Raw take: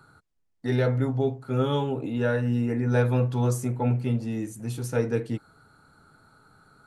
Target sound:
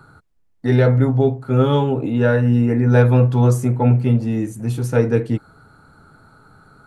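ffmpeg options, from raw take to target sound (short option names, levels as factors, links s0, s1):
-filter_complex "[0:a]asplit=2[s0][s1];[s1]adynamicsmooth=sensitivity=1.5:basefreq=3400,volume=0.75[s2];[s0][s2]amix=inputs=2:normalize=0,lowshelf=f=120:g=4,volume=1.5"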